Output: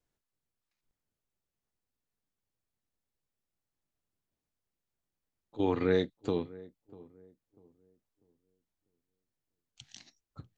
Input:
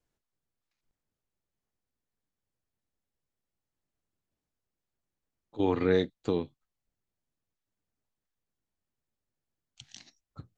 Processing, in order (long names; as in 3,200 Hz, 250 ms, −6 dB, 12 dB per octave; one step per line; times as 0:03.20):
feedback echo with a low-pass in the loop 645 ms, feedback 32%, low-pass 900 Hz, level −19.5 dB
level −2 dB